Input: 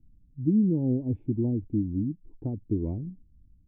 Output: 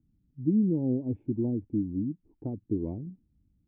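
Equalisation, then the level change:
high-pass filter 220 Hz 6 dB per octave
high-frequency loss of the air 280 metres
+1.5 dB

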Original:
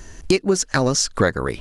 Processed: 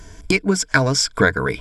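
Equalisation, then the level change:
EQ curve with evenly spaced ripples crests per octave 1.7, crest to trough 11 dB
dynamic equaliser 1,900 Hz, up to +7 dB, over −34 dBFS, Q 1.2
−1.0 dB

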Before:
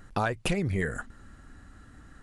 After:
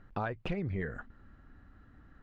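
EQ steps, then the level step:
high-frequency loss of the air 210 metres
high-shelf EQ 4,700 Hz −7 dB
−6.0 dB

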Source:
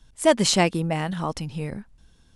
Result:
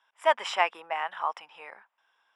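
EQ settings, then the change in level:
Savitzky-Golay smoothing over 25 samples
four-pole ladder high-pass 760 Hz, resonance 40%
+6.0 dB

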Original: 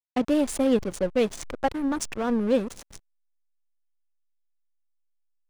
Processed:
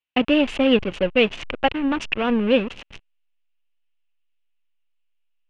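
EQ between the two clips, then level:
low-pass with resonance 2,800 Hz, resonance Q 5.8
+4.0 dB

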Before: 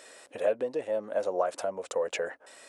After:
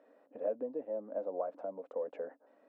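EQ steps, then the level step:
four-pole ladder band-pass 330 Hz, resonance 55%
parametric band 360 Hz −13.5 dB 0.46 octaves
+8.0 dB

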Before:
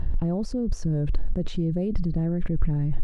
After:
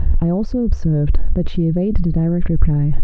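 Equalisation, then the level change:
high-frequency loss of the air 200 metres
parametric band 65 Hz +9 dB 0.45 octaves
+8.5 dB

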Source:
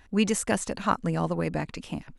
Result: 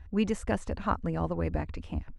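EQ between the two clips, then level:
low-pass filter 1,600 Hz 6 dB per octave
parametric band 65 Hz +5 dB 2.6 octaves
low shelf with overshoot 100 Hz +7.5 dB, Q 3
−3.0 dB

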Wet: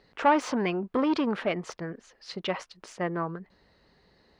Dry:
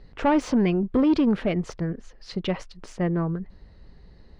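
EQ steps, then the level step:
high-pass filter 580 Hz 6 dB per octave
dynamic equaliser 1,100 Hz, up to +5 dB, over −43 dBFS, Q 0.97
0.0 dB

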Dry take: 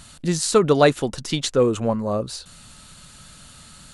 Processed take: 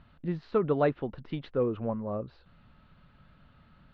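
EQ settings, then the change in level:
Gaussian smoothing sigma 2.3 samples
high-frequency loss of the air 370 metres
−9.0 dB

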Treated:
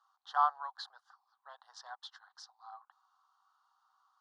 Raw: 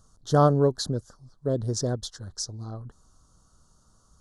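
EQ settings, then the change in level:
Chebyshev high-pass with heavy ripple 760 Hz, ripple 3 dB
high-frequency loss of the air 390 metres
+2.0 dB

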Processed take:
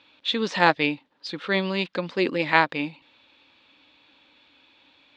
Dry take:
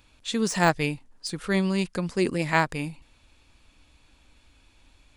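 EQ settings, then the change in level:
loudspeaker in its box 140–3,700 Hz, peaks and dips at 290 Hz +7 dB, 540 Hz +6 dB, 880 Hz +3 dB, 3,700 Hz +5 dB
spectral tilt +2.5 dB per octave
notch filter 670 Hz, Q 18
+2.0 dB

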